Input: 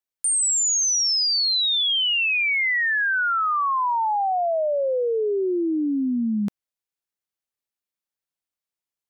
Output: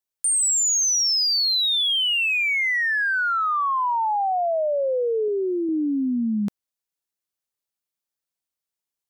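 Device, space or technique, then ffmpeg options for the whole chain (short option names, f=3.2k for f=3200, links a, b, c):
exciter from parts: -filter_complex "[0:a]asettb=1/sr,asplit=3[a][b][c];[a]atrim=end=5.284[d];[b]atrim=start=5.28:end=5.69,asetpts=PTS-STARTPTS,afade=t=in:d=0.004:c=qsin,afade=t=out:st=0.406:d=0.004:c=qsin,bass=f=250:g=-6,treble=f=4k:g=5[e];[c]atrim=start=5.686[f];[d][e]acrossfade=d=0.004:c1=hsin:c2=qsin[g];[g][f]acrossfade=d=0.004:c1=qsin:c2=hsin,asplit=2[h][i];[i]highpass=2.2k,asoftclip=type=tanh:threshold=-34.5dB,highpass=f=2.2k:p=1,volume=-7.5dB[j];[h][j]amix=inputs=2:normalize=0"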